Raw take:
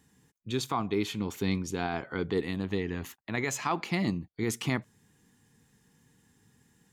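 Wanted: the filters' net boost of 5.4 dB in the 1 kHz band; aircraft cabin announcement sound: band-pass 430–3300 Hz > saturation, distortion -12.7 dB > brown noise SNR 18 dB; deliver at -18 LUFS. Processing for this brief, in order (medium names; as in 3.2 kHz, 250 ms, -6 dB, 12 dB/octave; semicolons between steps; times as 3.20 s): band-pass 430–3300 Hz; peaking EQ 1 kHz +7 dB; saturation -21 dBFS; brown noise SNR 18 dB; trim +17.5 dB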